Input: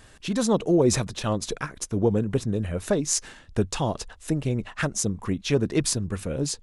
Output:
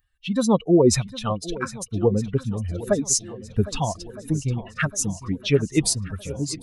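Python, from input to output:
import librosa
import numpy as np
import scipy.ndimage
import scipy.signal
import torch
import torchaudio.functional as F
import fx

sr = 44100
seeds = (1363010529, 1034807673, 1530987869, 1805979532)

p1 = fx.bin_expand(x, sr, power=2.0)
p2 = p1 + fx.echo_swing(p1, sr, ms=1263, ratio=1.5, feedback_pct=48, wet_db=-16.5, dry=0)
y = p2 * 10.0 ** (6.5 / 20.0)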